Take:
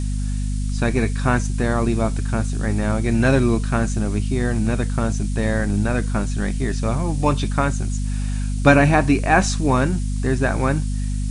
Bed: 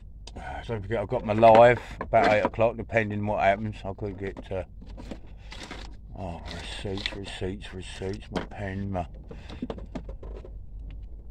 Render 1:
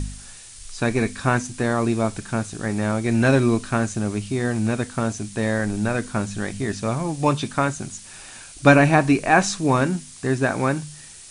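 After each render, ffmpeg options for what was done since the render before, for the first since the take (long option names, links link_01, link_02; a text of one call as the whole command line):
ffmpeg -i in.wav -af "bandreject=frequency=50:width_type=h:width=4,bandreject=frequency=100:width_type=h:width=4,bandreject=frequency=150:width_type=h:width=4,bandreject=frequency=200:width_type=h:width=4,bandreject=frequency=250:width_type=h:width=4" out.wav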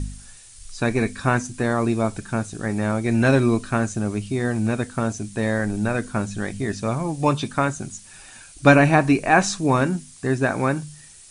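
ffmpeg -i in.wav -af "afftdn=noise_reduction=6:noise_floor=-42" out.wav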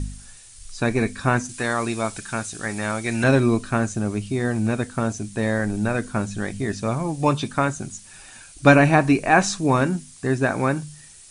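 ffmpeg -i in.wav -filter_complex "[0:a]asettb=1/sr,asplit=3[link_01][link_02][link_03];[link_01]atrim=end=1.494[link_04];[link_02]atrim=start=1.49:end=3.24,asetpts=PTS-STARTPTS,afade=type=in:duration=0.004:curve=qsin,afade=type=out:start_time=1.746:duration=0.004:curve=qsin,tiltshelf=frequency=910:gain=-6.5[link_05];[link_03]atrim=start=3.236[link_06];[link_04][link_05]acrossfade=duration=0.004:curve1=hsin:curve2=qsin[link_07];[link_07][link_06]acrossfade=duration=0.004:curve1=qsin:curve2=hsin" out.wav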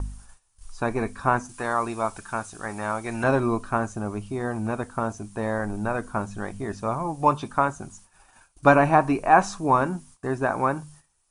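ffmpeg -i in.wav -af "agate=range=-16dB:threshold=-42dB:ratio=16:detection=peak,equalizer=frequency=125:width_type=o:width=1:gain=-7,equalizer=frequency=250:width_type=o:width=1:gain=-5,equalizer=frequency=500:width_type=o:width=1:gain=-3,equalizer=frequency=1000:width_type=o:width=1:gain=7,equalizer=frequency=2000:width_type=o:width=1:gain=-8,equalizer=frequency=4000:width_type=o:width=1:gain=-9,equalizer=frequency=8000:width_type=o:width=1:gain=-9" out.wav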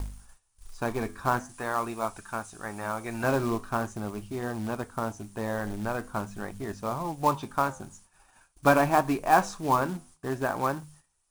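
ffmpeg -i in.wav -af "acrusher=bits=4:mode=log:mix=0:aa=0.000001,flanger=delay=2.8:depth=7.9:regen=-84:speed=0.45:shape=triangular" out.wav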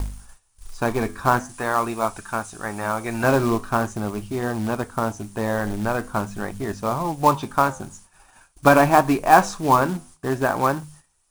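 ffmpeg -i in.wav -af "volume=7.5dB,alimiter=limit=-1dB:level=0:latency=1" out.wav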